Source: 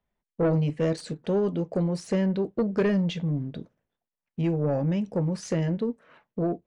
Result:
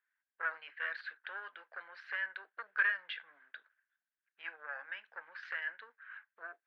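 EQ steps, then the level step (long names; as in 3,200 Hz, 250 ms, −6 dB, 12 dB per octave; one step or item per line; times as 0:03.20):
four-pole ladder high-pass 1,500 Hz, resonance 80%
high-frequency loss of the air 430 metres
high shelf with overshoot 5,900 Hz −12 dB, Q 1.5
+10.5 dB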